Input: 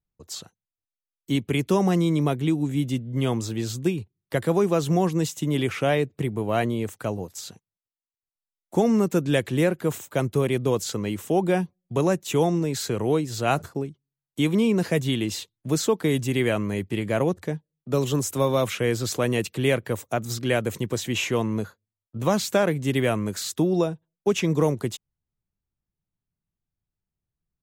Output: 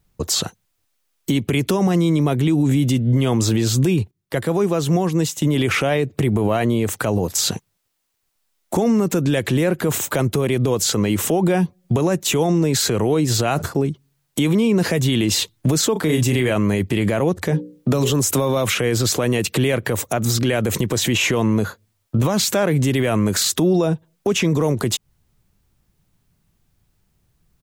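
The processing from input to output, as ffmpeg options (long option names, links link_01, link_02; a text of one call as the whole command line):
ffmpeg -i in.wav -filter_complex "[0:a]asplit=3[link_01][link_02][link_03];[link_01]afade=type=out:start_time=15.95:duration=0.02[link_04];[link_02]asplit=2[link_05][link_06];[link_06]adelay=32,volume=-6.5dB[link_07];[link_05][link_07]amix=inputs=2:normalize=0,afade=type=in:start_time=15.95:duration=0.02,afade=type=out:start_time=16.5:duration=0.02[link_08];[link_03]afade=type=in:start_time=16.5:duration=0.02[link_09];[link_04][link_08][link_09]amix=inputs=3:normalize=0,asettb=1/sr,asplit=3[link_10][link_11][link_12];[link_10]atrim=end=17.434[link_13];[link_11]atrim=start=17.43:end=18.1,asetpts=PTS-STARTPTS,afade=type=in:duration=0.004:curve=qsin,afade=type=out:start_time=0.666:duration=0.004:curve=qsin,bandreject=frequency=60:width_type=h:width=6,bandreject=frequency=120:width_type=h:width=6,bandreject=frequency=180:width_type=h:width=6,bandreject=frequency=240:width_type=h:width=6,bandreject=frequency=300:width_type=h:width=6,bandreject=frequency=360:width_type=h:width=6,bandreject=frequency=420:width_type=h:width=6,bandreject=frequency=480:width_type=h:width=6,bandreject=frequency=540:width_type=h:width=6[link_14];[link_12]atrim=start=18.096[link_15];[link_13][link_14]acrossfade=duration=0.004:curve1=hsin:curve2=qsin[link_16];[link_16][link_15]acrossfade=duration=0.004:curve1=qsin:curve2=hsin,asplit=3[link_17][link_18][link_19];[link_17]atrim=end=4.11,asetpts=PTS-STARTPTS,afade=type=out:start_time=3.82:duration=0.29:curve=log:silence=0.177828[link_20];[link_18]atrim=start=4.11:end=5.42,asetpts=PTS-STARTPTS,volume=-15dB[link_21];[link_19]atrim=start=5.42,asetpts=PTS-STARTPTS,afade=type=in:duration=0.29:curve=log:silence=0.177828[link_22];[link_20][link_21][link_22]concat=n=3:v=0:a=1,acompressor=threshold=-35dB:ratio=2.5,alimiter=level_in=31.5dB:limit=-1dB:release=50:level=0:latency=1,volume=-9dB" out.wav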